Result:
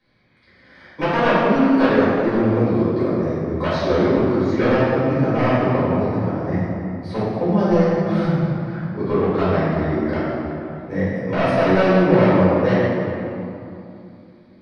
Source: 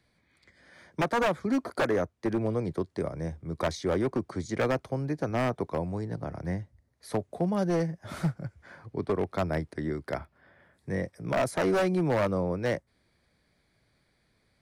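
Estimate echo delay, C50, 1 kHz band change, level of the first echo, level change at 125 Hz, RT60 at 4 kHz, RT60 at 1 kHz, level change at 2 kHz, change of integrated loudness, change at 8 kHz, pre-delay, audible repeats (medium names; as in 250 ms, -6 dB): no echo, -3.5 dB, +11.5 dB, no echo, +11.5 dB, 1.6 s, 2.8 s, +10.5 dB, +11.5 dB, no reading, 4 ms, no echo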